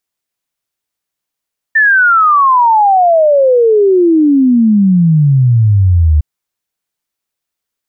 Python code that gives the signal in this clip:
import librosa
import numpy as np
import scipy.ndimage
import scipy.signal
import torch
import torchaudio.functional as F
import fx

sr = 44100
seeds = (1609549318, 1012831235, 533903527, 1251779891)

y = fx.ess(sr, length_s=4.46, from_hz=1800.0, to_hz=73.0, level_db=-5.0)